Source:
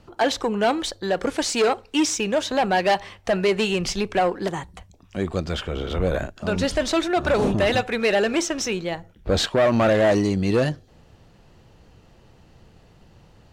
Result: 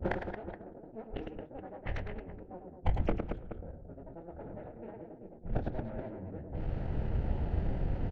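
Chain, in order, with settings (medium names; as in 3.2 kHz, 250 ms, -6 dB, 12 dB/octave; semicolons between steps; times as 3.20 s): cycle switcher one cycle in 2, muted; peaking EQ 1.1 kHz -14 dB 0.33 oct; inverted gate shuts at -28 dBFS, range -39 dB; hum notches 50/100/150/200/250/300/350/400/450 Hz; spring tank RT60 1.9 s, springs 48 ms, chirp 50 ms, DRR 19.5 dB; vibrato 1.5 Hz 55 cents; low-pass 1.4 kHz 12 dB/octave; on a send: multi-tap echo 41/168/181/375/708 ms -8/-19.5/-5.5/-6.5/-11 dB; on the sum: level-controlled noise filter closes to 310 Hz, open at -49.5 dBFS; bass shelf 110 Hz +9.5 dB; time stretch by phase-locked vocoder 0.6×; trim +17 dB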